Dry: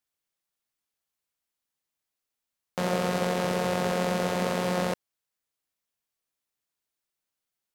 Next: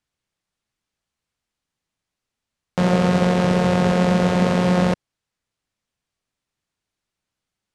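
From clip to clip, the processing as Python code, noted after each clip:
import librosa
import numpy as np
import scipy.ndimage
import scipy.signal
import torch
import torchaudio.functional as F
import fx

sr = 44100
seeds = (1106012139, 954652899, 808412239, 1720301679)

y = scipy.signal.sosfilt(scipy.signal.bessel(4, 7500.0, 'lowpass', norm='mag', fs=sr, output='sos'), x)
y = fx.bass_treble(y, sr, bass_db=9, treble_db=-2)
y = F.gain(torch.from_numpy(y), 6.5).numpy()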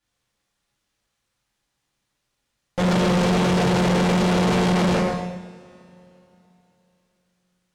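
y = fx.rev_double_slope(x, sr, seeds[0], early_s=0.91, late_s=3.4, knee_db=-27, drr_db=-9.0)
y = fx.tube_stage(y, sr, drive_db=17.0, bias=0.45)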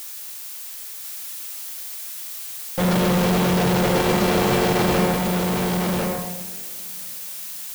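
y = fx.dmg_noise_colour(x, sr, seeds[1], colour='blue', level_db=-35.0)
y = y + 10.0 ** (-3.5 / 20.0) * np.pad(y, (int(1047 * sr / 1000.0), 0))[:len(y)]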